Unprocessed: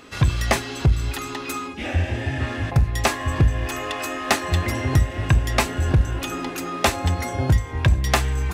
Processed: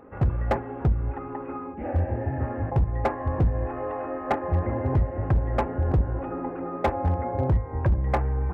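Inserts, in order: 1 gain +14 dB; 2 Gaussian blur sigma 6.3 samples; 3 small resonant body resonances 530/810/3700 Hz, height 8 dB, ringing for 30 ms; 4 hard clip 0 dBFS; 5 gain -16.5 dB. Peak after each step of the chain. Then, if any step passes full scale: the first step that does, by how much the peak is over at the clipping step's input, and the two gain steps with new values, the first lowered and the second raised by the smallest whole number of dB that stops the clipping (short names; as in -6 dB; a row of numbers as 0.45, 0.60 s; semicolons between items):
+8.0, +6.0, +8.0, 0.0, -16.5 dBFS; step 1, 8.0 dB; step 1 +6 dB, step 5 -8.5 dB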